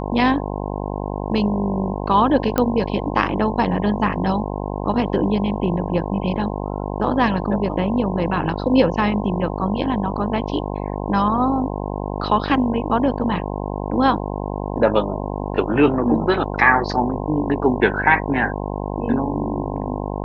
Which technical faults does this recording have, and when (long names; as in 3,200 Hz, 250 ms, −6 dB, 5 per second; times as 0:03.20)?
mains buzz 50 Hz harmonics 21 −26 dBFS
0:02.58: click −5 dBFS